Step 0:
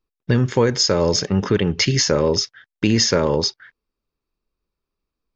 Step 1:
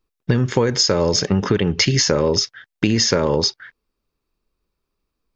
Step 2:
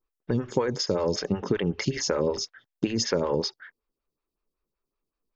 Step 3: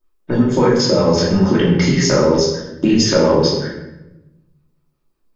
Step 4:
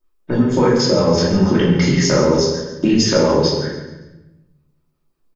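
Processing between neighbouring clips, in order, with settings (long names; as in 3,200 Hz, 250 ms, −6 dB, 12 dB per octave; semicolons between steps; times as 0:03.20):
downward compressor, threshold −18 dBFS, peak gain reduction 7 dB; level +5 dB
phaser with staggered stages 5.3 Hz; level −5.5 dB
rectangular room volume 380 cubic metres, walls mixed, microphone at 2.7 metres; level +4.5 dB
repeating echo 141 ms, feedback 37%, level −12 dB; level −1 dB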